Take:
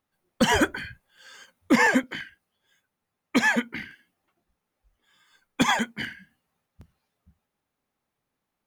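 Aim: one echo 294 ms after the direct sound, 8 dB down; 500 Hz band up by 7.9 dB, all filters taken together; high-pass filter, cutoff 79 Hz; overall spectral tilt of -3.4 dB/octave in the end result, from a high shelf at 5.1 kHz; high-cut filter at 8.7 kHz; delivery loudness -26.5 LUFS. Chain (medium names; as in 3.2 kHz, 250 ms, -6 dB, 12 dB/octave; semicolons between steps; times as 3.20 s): high-pass 79 Hz; low-pass 8.7 kHz; peaking EQ 500 Hz +9 dB; treble shelf 5.1 kHz +6 dB; delay 294 ms -8 dB; trim -5 dB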